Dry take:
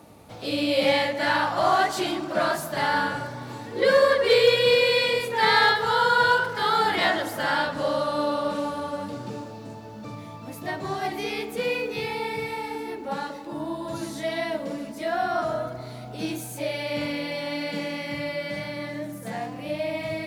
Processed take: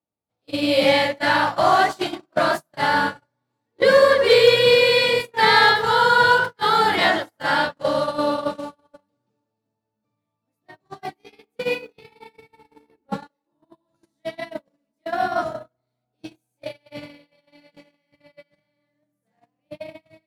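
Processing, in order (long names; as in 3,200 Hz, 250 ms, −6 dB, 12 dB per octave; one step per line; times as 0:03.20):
0:12.49–0:13.27: low-shelf EQ 240 Hz +10 dB
noise gate −25 dBFS, range −45 dB
level +4.5 dB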